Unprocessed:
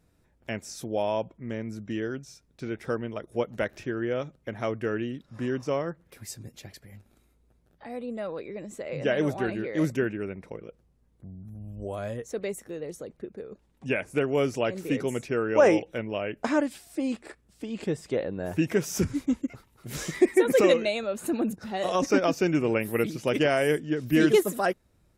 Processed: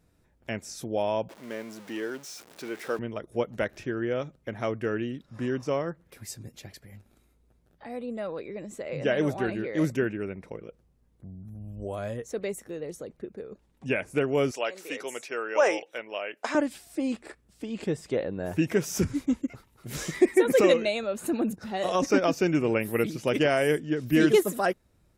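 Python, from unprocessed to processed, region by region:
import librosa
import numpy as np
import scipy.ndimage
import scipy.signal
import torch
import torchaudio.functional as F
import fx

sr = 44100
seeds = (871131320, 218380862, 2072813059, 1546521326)

y = fx.chain(x, sr, fx.zero_step(step_db=-40.0),
    fx.highpass(hz=350.0, slope=12), at=(1.29, 2.99))
y = fx.chain(y, sr, fx.highpass(hz=600.0, slope=12),
    fx.peak_eq(hz=5200.0, db=2.5, octaves=2.0), at=(14.51, 16.55))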